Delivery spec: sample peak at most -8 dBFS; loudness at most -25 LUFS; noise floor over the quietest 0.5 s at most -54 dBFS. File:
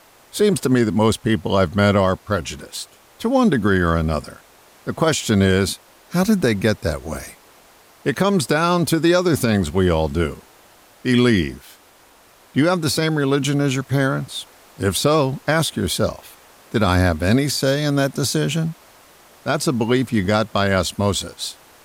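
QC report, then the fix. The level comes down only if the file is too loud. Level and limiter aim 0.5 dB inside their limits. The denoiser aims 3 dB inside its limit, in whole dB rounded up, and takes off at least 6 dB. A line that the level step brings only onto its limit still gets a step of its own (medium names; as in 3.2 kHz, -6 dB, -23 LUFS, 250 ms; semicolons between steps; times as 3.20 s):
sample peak -5.5 dBFS: fail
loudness -19.5 LUFS: fail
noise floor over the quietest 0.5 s -51 dBFS: fail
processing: trim -6 dB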